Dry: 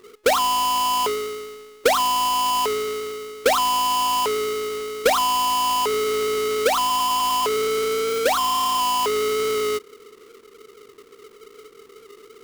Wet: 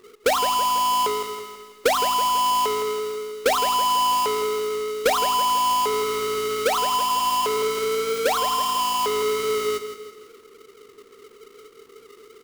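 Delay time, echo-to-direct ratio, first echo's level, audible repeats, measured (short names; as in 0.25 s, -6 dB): 0.164 s, -9.0 dB, -10.0 dB, 4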